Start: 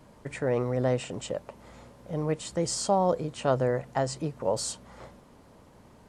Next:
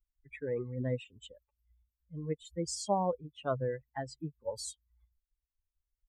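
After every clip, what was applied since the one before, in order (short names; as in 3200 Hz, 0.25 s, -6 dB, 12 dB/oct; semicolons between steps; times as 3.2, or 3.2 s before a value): per-bin expansion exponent 3; gain -2.5 dB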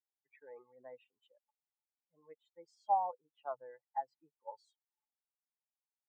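ladder band-pass 860 Hz, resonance 80%; gain +1.5 dB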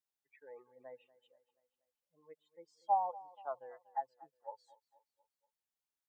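feedback echo 0.239 s, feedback 50%, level -20 dB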